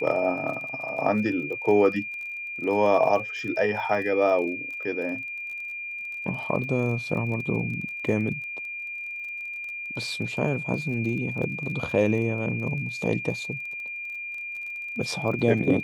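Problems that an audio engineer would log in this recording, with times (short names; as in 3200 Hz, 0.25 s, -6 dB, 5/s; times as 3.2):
crackle 31/s -35 dBFS
tone 2400 Hz -32 dBFS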